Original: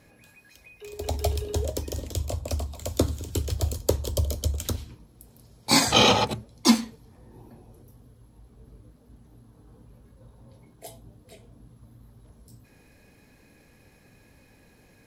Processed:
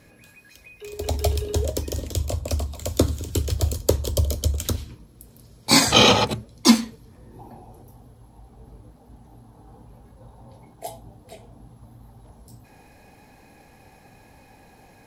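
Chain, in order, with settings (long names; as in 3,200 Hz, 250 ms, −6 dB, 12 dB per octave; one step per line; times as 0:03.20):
parametric band 800 Hz −3 dB 0.48 octaves, from 0:07.39 +12.5 dB
level +4 dB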